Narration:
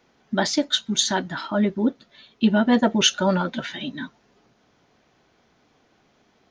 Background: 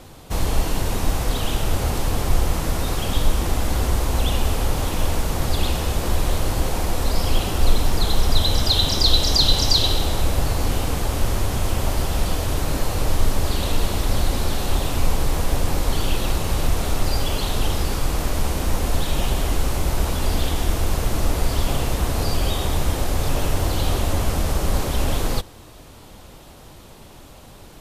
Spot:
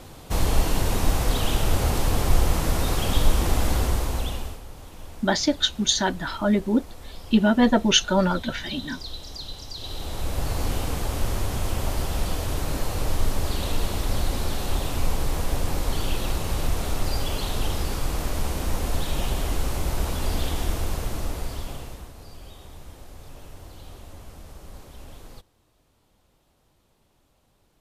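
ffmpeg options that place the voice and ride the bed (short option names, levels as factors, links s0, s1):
-filter_complex "[0:a]adelay=4900,volume=1[s0];[1:a]volume=5.62,afade=t=out:st=3.66:d=0.95:silence=0.105925,afade=t=in:st=9.76:d=0.83:silence=0.16788,afade=t=out:st=20.63:d=1.5:silence=0.133352[s1];[s0][s1]amix=inputs=2:normalize=0"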